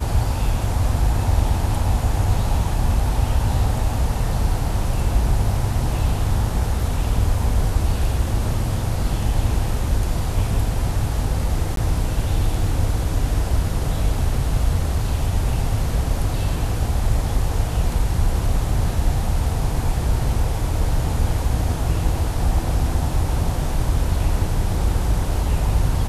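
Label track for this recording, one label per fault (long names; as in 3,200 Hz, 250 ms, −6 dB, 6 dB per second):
11.760000	11.770000	drop-out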